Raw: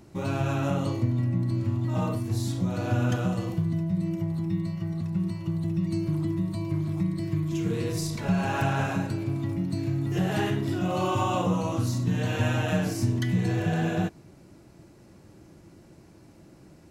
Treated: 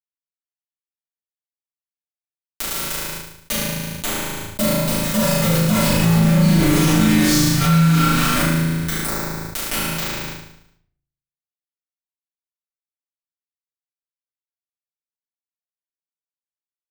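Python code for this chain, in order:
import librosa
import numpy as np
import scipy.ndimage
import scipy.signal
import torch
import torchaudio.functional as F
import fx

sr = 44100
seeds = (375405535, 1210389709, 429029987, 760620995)

p1 = fx.doppler_pass(x, sr, speed_mps=38, closest_m=15.0, pass_at_s=6.49)
p2 = fx.dmg_noise_colour(p1, sr, seeds[0], colour='white', level_db=-59.0)
p3 = scipy.signal.sosfilt(scipy.signal.ellip(3, 1.0, 40, [290.0, 1300.0], 'bandstop', fs=sr, output='sos'), p2)
p4 = fx.low_shelf(p3, sr, hz=280.0, db=-8.5)
p5 = p4 + 0.41 * np.pad(p4, (int(4.3 * sr / 1000.0), 0))[:len(p4)]
p6 = np.sign(p5) * np.maximum(np.abs(p5) - 10.0 ** (-55.0 / 20.0), 0.0)
p7 = p5 + (p6 * librosa.db_to_amplitude(-11.5))
p8 = fx.volume_shaper(p7, sr, bpm=97, per_beat=1, depth_db=-7, release_ms=207.0, shape='fast start')
p9 = fx.quant_companded(p8, sr, bits=2)
p10 = p9 + fx.room_flutter(p9, sr, wall_m=6.3, rt60_s=0.76, dry=0)
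p11 = fx.room_shoebox(p10, sr, seeds[1], volume_m3=70.0, walls='mixed', distance_m=2.6)
p12 = fx.env_flatten(p11, sr, amount_pct=70)
y = p12 * librosa.db_to_amplitude(-7.5)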